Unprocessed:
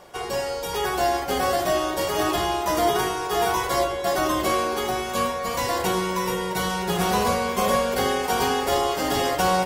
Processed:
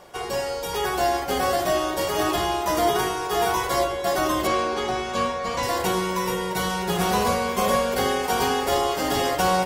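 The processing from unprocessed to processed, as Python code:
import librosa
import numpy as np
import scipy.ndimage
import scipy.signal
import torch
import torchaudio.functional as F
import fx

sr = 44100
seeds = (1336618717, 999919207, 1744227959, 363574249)

y = fx.lowpass(x, sr, hz=6300.0, slope=12, at=(4.47, 5.63))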